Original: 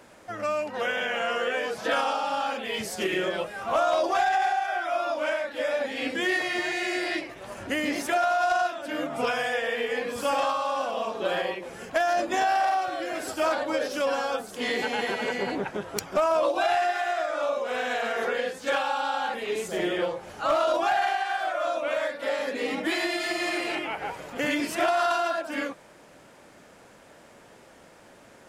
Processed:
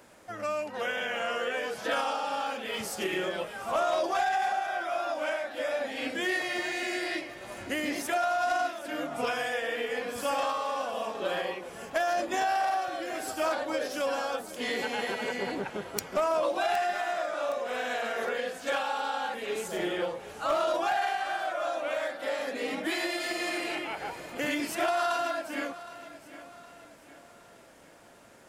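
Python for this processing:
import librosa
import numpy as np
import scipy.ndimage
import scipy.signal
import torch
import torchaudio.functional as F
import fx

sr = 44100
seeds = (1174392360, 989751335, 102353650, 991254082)

y = fx.high_shelf(x, sr, hz=9200.0, db=7.0)
y = fx.echo_feedback(y, sr, ms=765, feedback_pct=45, wet_db=-16)
y = y * librosa.db_to_amplitude(-4.0)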